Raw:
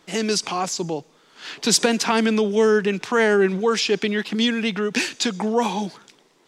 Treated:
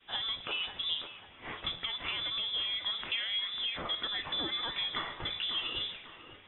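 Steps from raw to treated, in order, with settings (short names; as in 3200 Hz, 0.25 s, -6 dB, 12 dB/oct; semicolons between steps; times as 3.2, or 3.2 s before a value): zero-crossing step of -31.5 dBFS; notches 60/120/180/240/300/360 Hz; expander -27 dBFS; compressor 16:1, threshold -25 dBFS, peak gain reduction 14 dB; resonator 82 Hz, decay 0.48 s, harmonics all, mix 60%; on a send: thin delay 0.546 s, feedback 43%, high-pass 1400 Hz, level -8 dB; on the sum: spring tank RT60 1.8 s, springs 51 ms, chirp 25 ms, DRR 17.5 dB; inverted band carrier 3700 Hz; MP3 24 kbps 22050 Hz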